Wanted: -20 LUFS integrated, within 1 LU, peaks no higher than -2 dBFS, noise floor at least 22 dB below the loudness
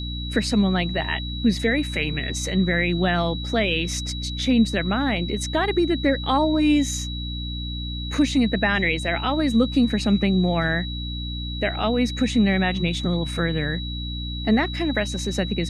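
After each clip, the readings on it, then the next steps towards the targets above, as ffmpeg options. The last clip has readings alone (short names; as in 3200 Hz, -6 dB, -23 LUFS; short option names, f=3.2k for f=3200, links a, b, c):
hum 60 Hz; harmonics up to 300 Hz; hum level -28 dBFS; steady tone 3900 Hz; tone level -33 dBFS; loudness -22.5 LUFS; peak -8.0 dBFS; loudness target -20.0 LUFS
-> -af "bandreject=f=60:t=h:w=4,bandreject=f=120:t=h:w=4,bandreject=f=180:t=h:w=4,bandreject=f=240:t=h:w=4,bandreject=f=300:t=h:w=4"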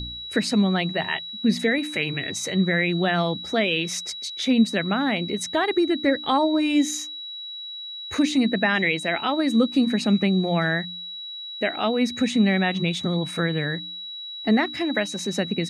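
hum none; steady tone 3900 Hz; tone level -33 dBFS
-> -af "bandreject=f=3.9k:w=30"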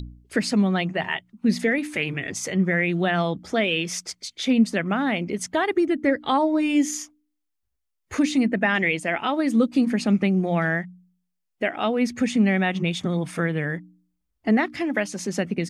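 steady tone none; loudness -23.5 LUFS; peak -8.5 dBFS; loudness target -20.0 LUFS
-> -af "volume=3.5dB"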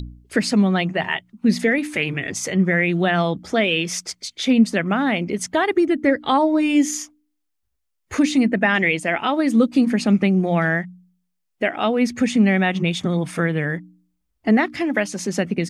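loudness -20.0 LUFS; peak -5.0 dBFS; noise floor -74 dBFS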